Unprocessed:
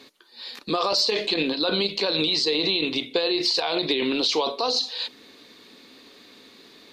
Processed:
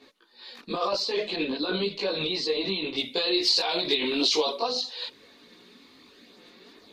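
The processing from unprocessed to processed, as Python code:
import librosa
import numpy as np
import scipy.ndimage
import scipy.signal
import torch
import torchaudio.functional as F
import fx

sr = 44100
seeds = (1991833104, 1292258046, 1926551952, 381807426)

y = fx.high_shelf(x, sr, hz=3600.0, db=fx.steps((0.0, -8.0), (2.96, 6.0), (4.56, -4.0)))
y = fx.chorus_voices(y, sr, voices=4, hz=0.56, base_ms=19, depth_ms=2.9, mix_pct=60)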